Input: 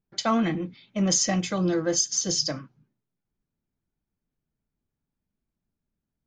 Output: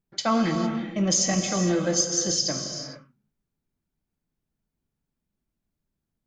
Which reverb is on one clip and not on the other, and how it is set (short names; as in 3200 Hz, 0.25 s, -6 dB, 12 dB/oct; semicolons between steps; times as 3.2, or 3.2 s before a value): non-linear reverb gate 0.48 s flat, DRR 4.5 dB